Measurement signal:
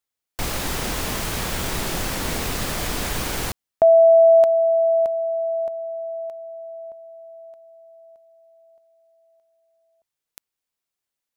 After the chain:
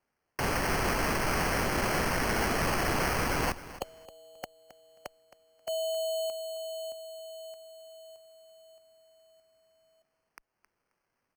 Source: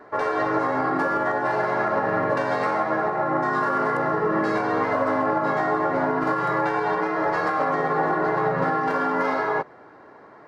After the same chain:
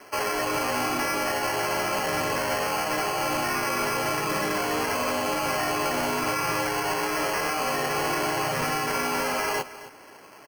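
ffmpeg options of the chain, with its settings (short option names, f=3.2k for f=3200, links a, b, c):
-filter_complex "[0:a]afftfilt=real='re*lt(hypot(re,im),0.562)':imag='im*lt(hypot(re,im),0.562)':win_size=1024:overlap=0.75,tiltshelf=f=1.1k:g=-4,acrossover=split=890[a][b];[b]alimiter=limit=-20dB:level=0:latency=1:release=249[c];[a][c]amix=inputs=2:normalize=0,afreqshift=-13,acrusher=samples=12:mix=1:aa=0.000001,volume=22.5dB,asoftclip=hard,volume=-22.5dB,asplit=2[d][e];[e]aecho=0:1:267|534:0.158|0.0285[f];[d][f]amix=inputs=2:normalize=0"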